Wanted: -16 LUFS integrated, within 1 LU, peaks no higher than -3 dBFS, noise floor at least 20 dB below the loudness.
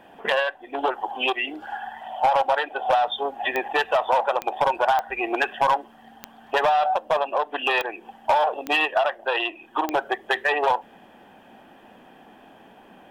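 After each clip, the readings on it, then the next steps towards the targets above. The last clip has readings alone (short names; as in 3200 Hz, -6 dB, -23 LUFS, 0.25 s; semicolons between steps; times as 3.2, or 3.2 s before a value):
clicks 7; loudness -23.5 LUFS; peak -9.5 dBFS; loudness target -16.0 LUFS
-> de-click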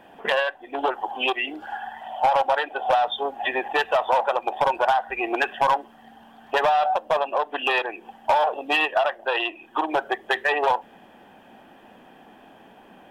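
clicks 0; loudness -23.5 LUFS; peak -11.0 dBFS; loudness target -16.0 LUFS
-> gain +7.5 dB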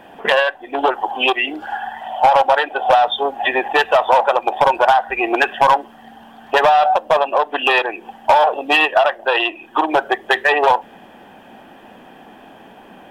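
loudness -16.0 LUFS; peak -3.5 dBFS; noise floor -43 dBFS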